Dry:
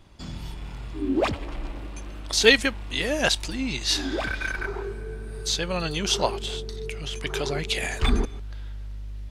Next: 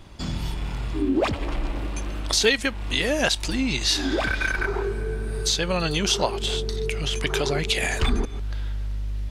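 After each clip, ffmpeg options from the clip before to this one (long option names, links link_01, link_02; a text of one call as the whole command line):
ffmpeg -i in.wav -af "acompressor=threshold=-29dB:ratio=2.5,volume=7.5dB" out.wav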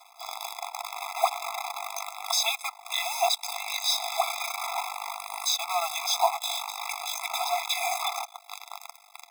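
ffmpeg -i in.wav -af "equalizer=frequency=100:width_type=o:width=0.67:gain=-4,equalizer=frequency=250:width_type=o:width=0.67:gain=-9,equalizer=frequency=630:width_type=o:width=0.67:gain=11,equalizer=frequency=2500:width_type=o:width=0.67:gain=-6,acrusher=bits=5:dc=4:mix=0:aa=0.000001,afftfilt=real='re*eq(mod(floor(b*sr/1024/670),2),1)':imag='im*eq(mod(floor(b*sr/1024/670),2),1)':win_size=1024:overlap=0.75" out.wav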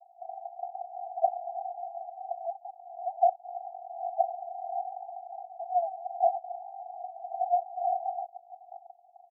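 ffmpeg -i in.wav -af "aresample=8000,volume=17.5dB,asoftclip=hard,volume=-17.5dB,aresample=44100,asuperpass=centerf=680:order=12:qfactor=3.2,volume=3.5dB" out.wav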